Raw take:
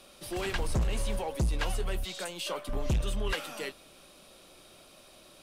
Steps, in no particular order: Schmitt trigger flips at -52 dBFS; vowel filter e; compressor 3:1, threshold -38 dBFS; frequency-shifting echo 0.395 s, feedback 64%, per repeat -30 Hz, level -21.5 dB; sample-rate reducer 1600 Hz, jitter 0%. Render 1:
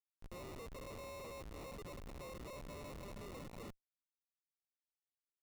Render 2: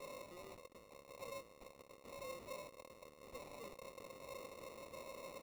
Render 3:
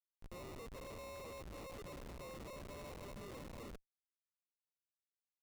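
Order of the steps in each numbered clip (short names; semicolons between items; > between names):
vowel filter > frequency-shifting echo > sample-rate reducer > Schmitt trigger > compressor; frequency-shifting echo > compressor > Schmitt trigger > vowel filter > sample-rate reducer; vowel filter > sample-rate reducer > frequency-shifting echo > compressor > Schmitt trigger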